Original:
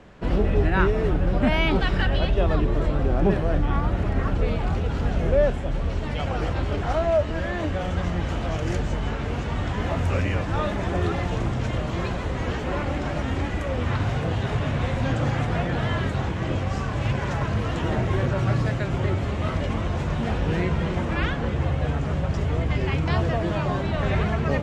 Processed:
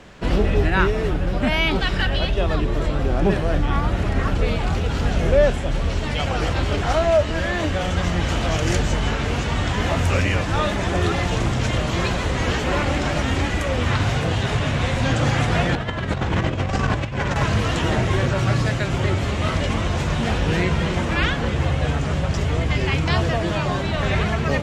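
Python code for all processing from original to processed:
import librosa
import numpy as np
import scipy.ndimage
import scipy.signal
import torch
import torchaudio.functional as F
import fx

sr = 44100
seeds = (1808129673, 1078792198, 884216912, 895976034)

y = fx.chain(x, sr, fx.high_shelf(hz=3600.0, db=-10.0),
    fx.over_compress(threshold_db=-28.0, ratio=-0.5),
    fx.resample_bad(factor=2, down='none', up='filtered'), at=(15.75, 17.36))
y = fx.high_shelf(y, sr, hz=2300.0, db=10.0)
y = fx.rider(y, sr, range_db=10, speed_s=2.0)
y = y * 10.0 ** (2.5 / 20.0)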